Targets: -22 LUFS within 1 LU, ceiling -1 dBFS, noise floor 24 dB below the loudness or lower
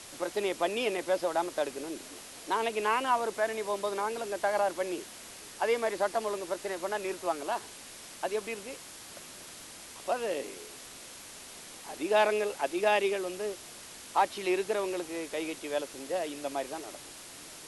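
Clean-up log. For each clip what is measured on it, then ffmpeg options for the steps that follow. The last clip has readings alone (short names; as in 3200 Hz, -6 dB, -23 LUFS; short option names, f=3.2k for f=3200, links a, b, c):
noise floor -48 dBFS; noise floor target -56 dBFS; loudness -32.0 LUFS; peak -14.5 dBFS; loudness target -22.0 LUFS
-> -af "afftdn=nr=8:nf=-48"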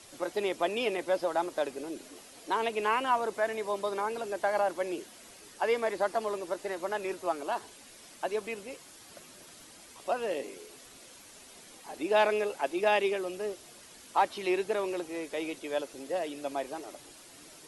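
noise floor -53 dBFS; noise floor target -56 dBFS
-> -af "afftdn=nr=6:nf=-53"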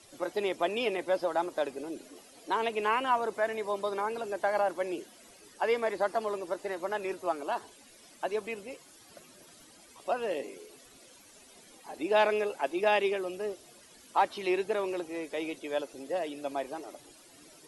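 noise floor -56 dBFS; loudness -32.0 LUFS; peak -15.0 dBFS; loudness target -22.0 LUFS
-> -af "volume=10dB"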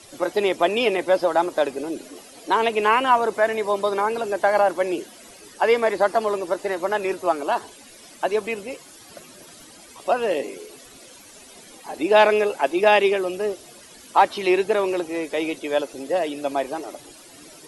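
loudness -22.0 LUFS; peak -5.0 dBFS; noise floor -46 dBFS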